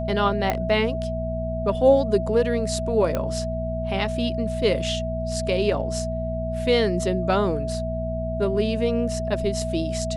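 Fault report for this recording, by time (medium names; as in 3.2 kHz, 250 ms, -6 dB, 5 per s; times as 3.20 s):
hum 60 Hz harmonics 4 -29 dBFS
whine 650 Hz -28 dBFS
0.50 s: pop -9 dBFS
3.15 s: pop -12 dBFS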